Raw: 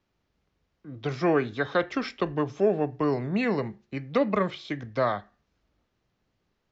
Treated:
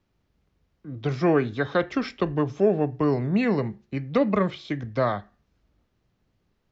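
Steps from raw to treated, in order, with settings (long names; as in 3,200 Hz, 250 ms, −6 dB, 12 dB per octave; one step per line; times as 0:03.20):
low-shelf EQ 290 Hz +7 dB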